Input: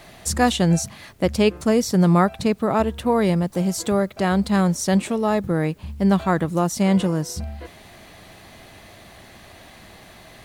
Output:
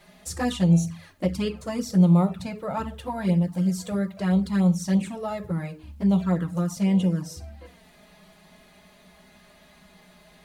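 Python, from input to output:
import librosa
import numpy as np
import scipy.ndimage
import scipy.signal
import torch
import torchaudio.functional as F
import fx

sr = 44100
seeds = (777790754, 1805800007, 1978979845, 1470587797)

y = fx.rev_fdn(x, sr, rt60_s=0.38, lf_ratio=1.4, hf_ratio=0.75, size_ms=33.0, drr_db=6.0)
y = fx.env_flanger(y, sr, rest_ms=5.2, full_db=-9.5)
y = y * 10.0 ** (-7.0 / 20.0)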